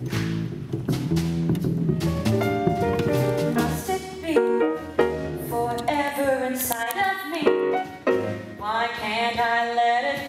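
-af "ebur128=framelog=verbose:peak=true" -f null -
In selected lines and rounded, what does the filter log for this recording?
Integrated loudness:
  I:         -24.1 LUFS
  Threshold: -34.1 LUFS
Loudness range:
  LRA:         1.0 LU
  Threshold: -44.0 LUFS
  LRA low:   -24.4 LUFS
  LRA high:  -23.5 LUFS
True peak:
  Peak:       -7.0 dBFS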